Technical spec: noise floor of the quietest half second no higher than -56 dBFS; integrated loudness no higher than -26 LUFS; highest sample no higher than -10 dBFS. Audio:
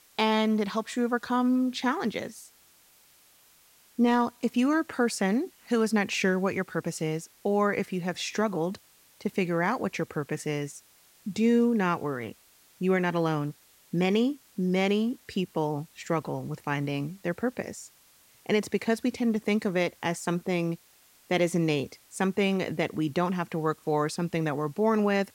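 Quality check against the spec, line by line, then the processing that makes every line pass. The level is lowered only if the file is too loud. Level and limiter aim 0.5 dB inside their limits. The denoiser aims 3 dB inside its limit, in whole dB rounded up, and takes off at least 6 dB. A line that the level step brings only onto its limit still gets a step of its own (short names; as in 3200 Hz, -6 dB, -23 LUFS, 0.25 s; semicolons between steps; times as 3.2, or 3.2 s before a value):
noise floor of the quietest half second -60 dBFS: OK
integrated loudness -28.0 LUFS: OK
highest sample -14.5 dBFS: OK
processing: none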